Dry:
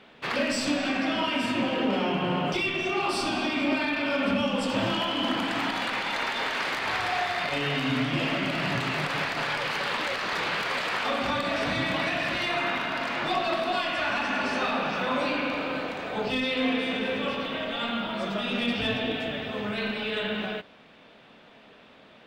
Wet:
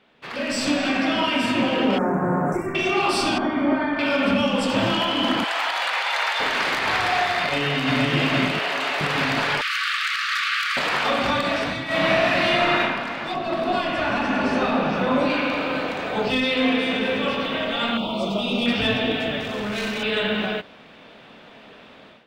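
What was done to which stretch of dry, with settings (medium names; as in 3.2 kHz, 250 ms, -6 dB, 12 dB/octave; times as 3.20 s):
1.98–2.75 s: elliptic band-stop 1.7–7.1 kHz, stop band 70 dB
3.38–3.99 s: Savitzky-Golay filter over 41 samples
5.44–6.40 s: high-pass 570 Hz 24 dB/octave
7.40–7.98 s: echo throw 470 ms, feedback 70%, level -1 dB
8.59–9.01 s: Chebyshev high-pass 550 Hz
9.61–10.77 s: brick-wall FIR high-pass 1.1 kHz
11.85–12.79 s: reverb throw, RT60 1.5 s, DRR -11 dB
13.34–15.30 s: tilt shelf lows +5.5 dB, about 790 Hz
17.97–18.66 s: Butterworth band-stop 1.7 kHz, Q 1.1
19.40–20.03 s: hard clipper -30.5 dBFS
whole clip: level rider gain up to 14 dB; trim -7 dB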